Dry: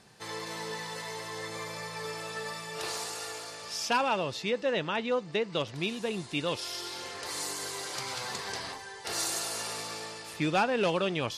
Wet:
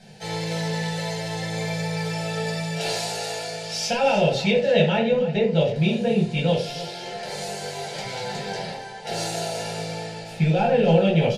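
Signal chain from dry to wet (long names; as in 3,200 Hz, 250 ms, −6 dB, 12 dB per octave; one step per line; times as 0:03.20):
low-pass filter 3,600 Hz 6 dB per octave, from 0:04.95 1,400 Hz
compressor whose output falls as the input rises −29 dBFS, ratio −1
phaser with its sweep stopped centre 300 Hz, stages 6
single-tap delay 313 ms −15 dB
convolution reverb RT60 0.35 s, pre-delay 6 ms, DRR −4 dB
level +5.5 dB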